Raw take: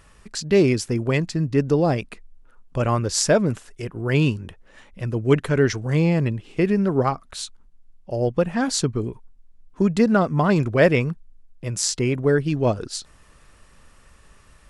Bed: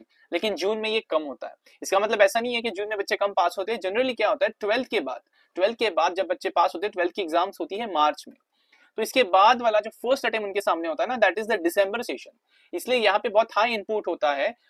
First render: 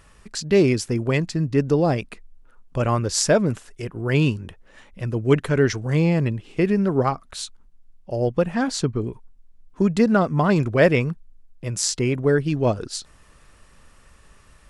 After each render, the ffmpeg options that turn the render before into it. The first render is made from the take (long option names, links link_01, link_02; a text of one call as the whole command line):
ffmpeg -i in.wav -filter_complex "[0:a]asettb=1/sr,asplit=3[link_01][link_02][link_03];[link_01]atrim=end=8.634[link_04];[link_02]atrim=start=8.63:end=9.07,asetpts=PTS-STARTPTS,afade=type=in:duration=0.004:curve=qsin,afade=type=out:start_time=0.436:duration=0.004:curve=qsin,highshelf=frequency=5500:gain=-8.5[link_05];[link_03]atrim=start=9.066[link_06];[link_04][link_05]acrossfade=duration=0.004:curve1=hsin:curve2=qsin[link_07];[link_07][link_06]acrossfade=duration=0.004:curve1=qsin:curve2=hsin" out.wav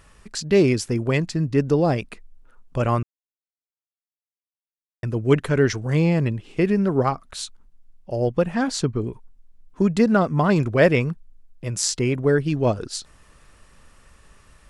ffmpeg -i in.wav -filter_complex "[0:a]asplit=3[link_01][link_02][link_03];[link_01]atrim=end=3.03,asetpts=PTS-STARTPTS,afade=type=out:start_time=3.026:duration=0.004:curve=hsin[link_04];[link_02]atrim=start=3.03:end=5.03,asetpts=PTS-STARTPTS,volume=0[link_05];[link_03]atrim=start=5.03,asetpts=PTS-STARTPTS,afade=type=in:duration=0.004:curve=hsin[link_06];[link_04][link_05][link_06]concat=n=3:v=0:a=1" out.wav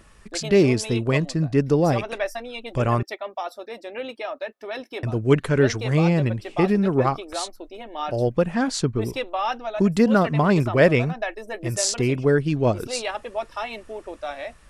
ffmpeg -i in.wav -i bed.wav -filter_complex "[1:a]volume=-8.5dB[link_01];[0:a][link_01]amix=inputs=2:normalize=0" out.wav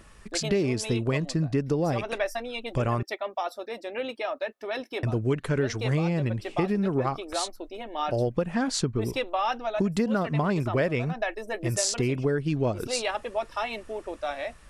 ffmpeg -i in.wav -af "acompressor=threshold=-22dB:ratio=6" out.wav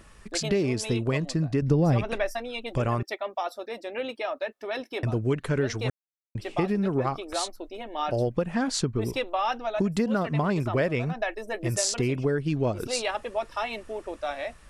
ffmpeg -i in.wav -filter_complex "[0:a]asettb=1/sr,asplit=3[link_01][link_02][link_03];[link_01]atrim=end=1.624[link_04];[link_02]atrim=start=1.62:end=2.31,asetpts=PTS-STARTPTS,afade=type=in:duration=0.004:curve=qsin,afade=type=out:start_time=0.686:duration=0.004:curve=qsin,bass=frequency=250:gain=9,treble=frequency=4000:gain=-3[link_05];[link_03]atrim=start=2.306[link_06];[link_04][link_05]acrossfade=duration=0.004:curve1=hsin:curve2=qsin[link_07];[link_07][link_06]acrossfade=duration=0.004:curve1=qsin:curve2=hsin,asplit=3[link_08][link_09][link_10];[link_08]atrim=end=5.9,asetpts=PTS-STARTPTS,afade=type=out:start_time=5.896:duration=0.004:curve=hsin[link_11];[link_09]atrim=start=5.9:end=6.35,asetpts=PTS-STARTPTS,volume=0[link_12];[link_10]atrim=start=6.35,asetpts=PTS-STARTPTS,afade=type=in:duration=0.004:curve=hsin[link_13];[link_11][link_12][link_13]concat=n=3:v=0:a=1" out.wav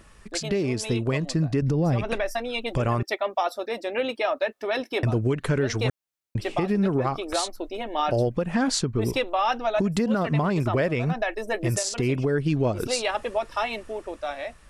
ffmpeg -i in.wav -af "dynaudnorm=framelen=200:gausssize=13:maxgain=6dB,alimiter=limit=-14.5dB:level=0:latency=1:release=170" out.wav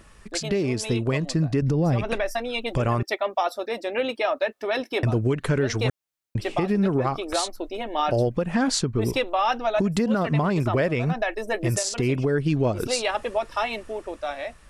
ffmpeg -i in.wav -af "volume=1dB" out.wav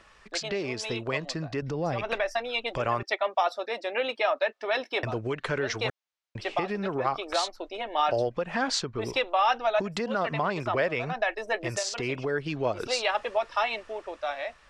ffmpeg -i in.wav -filter_complex "[0:a]acrossover=split=480 6400:gain=0.224 1 0.0794[link_01][link_02][link_03];[link_01][link_02][link_03]amix=inputs=3:normalize=0" out.wav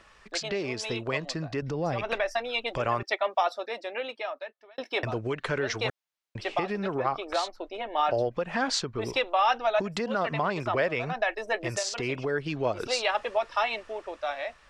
ffmpeg -i in.wav -filter_complex "[0:a]asettb=1/sr,asplit=3[link_01][link_02][link_03];[link_01]atrim=end=7.024[link_04];[link_02]atrim=start=7.02:end=8.32,asetpts=PTS-STARTPTS,afade=type=in:duration=0.004:curve=qsin,afade=type=out:start_time=1.296:duration=0.004:curve=qsin,highshelf=frequency=3800:gain=-7.5[link_05];[link_03]atrim=start=8.316[link_06];[link_04][link_05]acrossfade=duration=0.004:curve1=hsin:curve2=qsin[link_07];[link_07][link_06]acrossfade=duration=0.004:curve1=qsin:curve2=hsin,asplit=2[link_08][link_09];[link_08]atrim=end=4.78,asetpts=PTS-STARTPTS,afade=type=out:start_time=3.38:duration=1.4[link_10];[link_09]atrim=start=4.78,asetpts=PTS-STARTPTS,afade=type=in:duration=0.004:curve=hsin[link_11];[link_10][link_11]concat=n=2:v=0:a=1" out.wav